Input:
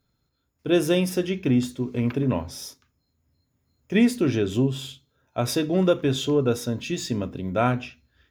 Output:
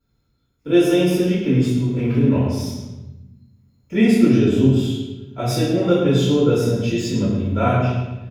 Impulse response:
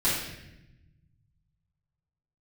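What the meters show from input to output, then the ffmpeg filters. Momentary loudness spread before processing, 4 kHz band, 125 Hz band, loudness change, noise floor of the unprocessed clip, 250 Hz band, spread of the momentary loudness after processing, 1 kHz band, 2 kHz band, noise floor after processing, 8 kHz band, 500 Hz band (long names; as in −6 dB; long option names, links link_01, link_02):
14 LU, +3.0 dB, +8.5 dB, +6.0 dB, −74 dBFS, +6.5 dB, 12 LU, +4.0 dB, +3.0 dB, −67 dBFS, +1.0 dB, +5.0 dB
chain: -filter_complex "[0:a]asplit=2[link_01][link_02];[link_02]adelay=107,lowpass=frequency=3100:poles=1,volume=-5dB,asplit=2[link_03][link_04];[link_04]adelay=107,lowpass=frequency=3100:poles=1,volume=0.49,asplit=2[link_05][link_06];[link_06]adelay=107,lowpass=frequency=3100:poles=1,volume=0.49,asplit=2[link_07][link_08];[link_08]adelay=107,lowpass=frequency=3100:poles=1,volume=0.49,asplit=2[link_09][link_10];[link_10]adelay=107,lowpass=frequency=3100:poles=1,volume=0.49,asplit=2[link_11][link_12];[link_12]adelay=107,lowpass=frequency=3100:poles=1,volume=0.49[link_13];[link_01][link_03][link_05][link_07][link_09][link_11][link_13]amix=inputs=7:normalize=0[link_14];[1:a]atrim=start_sample=2205,asetrate=57330,aresample=44100[link_15];[link_14][link_15]afir=irnorm=-1:irlink=0,volume=-7.5dB"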